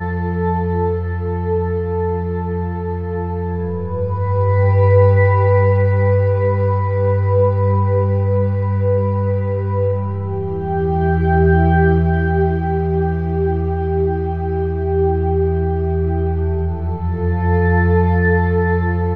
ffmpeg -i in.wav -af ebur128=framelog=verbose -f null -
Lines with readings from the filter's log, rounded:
Integrated loudness:
  I:         -17.2 LUFS
  Threshold: -27.2 LUFS
Loudness range:
  LRA:         5.7 LU
  Threshold: -37.1 LUFS
  LRA low:   -20.4 LUFS
  LRA high:  -14.7 LUFS